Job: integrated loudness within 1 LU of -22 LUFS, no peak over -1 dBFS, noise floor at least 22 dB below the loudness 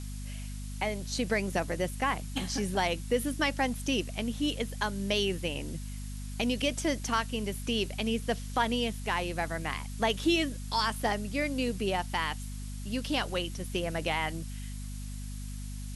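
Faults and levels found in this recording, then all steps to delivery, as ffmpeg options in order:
hum 50 Hz; harmonics up to 250 Hz; hum level -36 dBFS; noise floor -39 dBFS; noise floor target -54 dBFS; loudness -32.0 LUFS; peak -15.0 dBFS; loudness target -22.0 LUFS
-> -af "bandreject=f=50:t=h:w=4,bandreject=f=100:t=h:w=4,bandreject=f=150:t=h:w=4,bandreject=f=200:t=h:w=4,bandreject=f=250:t=h:w=4"
-af "afftdn=nr=15:nf=-39"
-af "volume=10dB"

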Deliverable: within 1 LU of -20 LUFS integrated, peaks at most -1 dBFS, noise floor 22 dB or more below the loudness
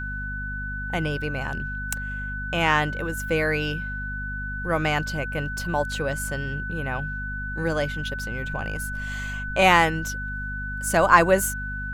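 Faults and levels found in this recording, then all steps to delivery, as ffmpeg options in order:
hum 50 Hz; harmonics up to 250 Hz; hum level -31 dBFS; steady tone 1500 Hz; tone level -31 dBFS; loudness -25.0 LUFS; peak -1.5 dBFS; loudness target -20.0 LUFS
-> -af "bandreject=f=50:t=h:w=4,bandreject=f=100:t=h:w=4,bandreject=f=150:t=h:w=4,bandreject=f=200:t=h:w=4,bandreject=f=250:t=h:w=4"
-af "bandreject=f=1.5k:w=30"
-af "volume=5dB,alimiter=limit=-1dB:level=0:latency=1"

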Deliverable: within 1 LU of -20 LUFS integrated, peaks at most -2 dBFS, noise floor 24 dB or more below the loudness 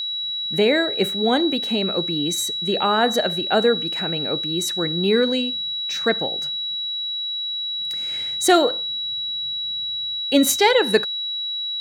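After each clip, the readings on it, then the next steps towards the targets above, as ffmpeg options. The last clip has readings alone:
steady tone 3900 Hz; tone level -24 dBFS; loudness -20.5 LUFS; peak -3.5 dBFS; loudness target -20.0 LUFS
-> -af "bandreject=f=3.9k:w=30"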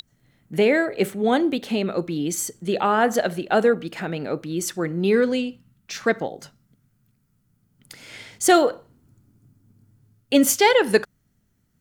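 steady tone none; loudness -21.5 LUFS; peak -4.0 dBFS; loudness target -20.0 LUFS
-> -af "volume=1.5dB"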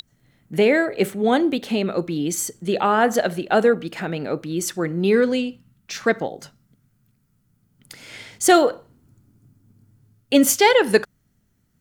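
loudness -20.0 LUFS; peak -2.5 dBFS; noise floor -66 dBFS

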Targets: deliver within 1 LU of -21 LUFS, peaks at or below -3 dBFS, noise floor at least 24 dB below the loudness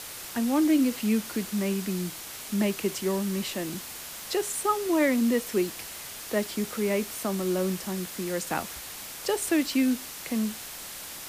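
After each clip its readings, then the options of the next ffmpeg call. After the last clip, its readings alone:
noise floor -40 dBFS; noise floor target -53 dBFS; loudness -28.5 LUFS; peak -13.5 dBFS; loudness target -21.0 LUFS
-> -af "afftdn=nr=13:nf=-40"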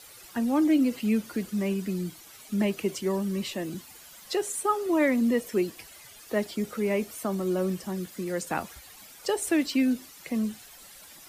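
noise floor -50 dBFS; noise floor target -53 dBFS
-> -af "afftdn=nr=6:nf=-50"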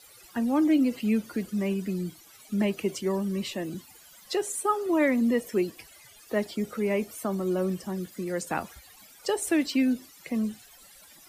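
noise floor -53 dBFS; loudness -28.5 LUFS; peak -14.0 dBFS; loudness target -21.0 LUFS
-> -af "volume=7.5dB"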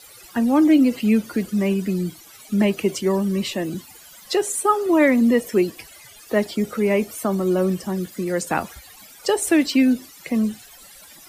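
loudness -21.0 LUFS; peak -6.5 dBFS; noise floor -46 dBFS

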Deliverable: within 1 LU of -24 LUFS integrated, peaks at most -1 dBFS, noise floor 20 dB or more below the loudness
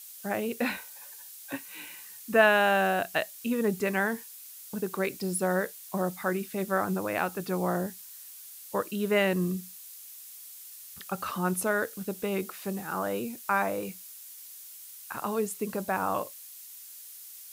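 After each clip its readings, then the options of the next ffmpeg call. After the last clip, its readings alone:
noise floor -47 dBFS; noise floor target -50 dBFS; loudness -29.5 LUFS; peak -9.5 dBFS; loudness target -24.0 LUFS
-> -af "afftdn=nr=6:nf=-47"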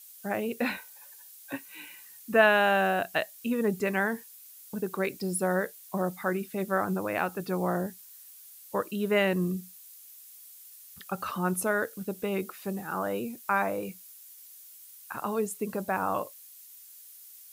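noise floor -51 dBFS; loudness -29.5 LUFS; peak -10.0 dBFS; loudness target -24.0 LUFS
-> -af "volume=5.5dB"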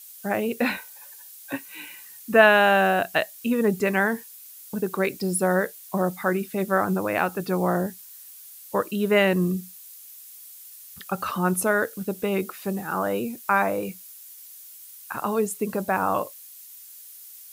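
loudness -24.0 LUFS; peak -4.5 dBFS; noise floor -45 dBFS

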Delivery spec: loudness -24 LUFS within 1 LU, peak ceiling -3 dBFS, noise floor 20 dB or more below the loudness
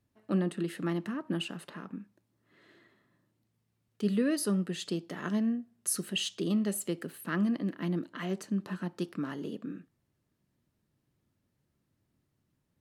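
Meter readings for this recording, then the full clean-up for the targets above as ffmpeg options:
loudness -33.0 LUFS; peak -17.0 dBFS; loudness target -24.0 LUFS
-> -af "volume=9dB"

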